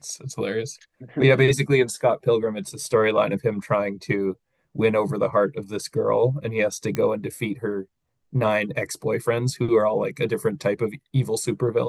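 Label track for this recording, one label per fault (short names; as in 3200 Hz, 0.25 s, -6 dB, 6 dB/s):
6.950000	6.950000	pop -13 dBFS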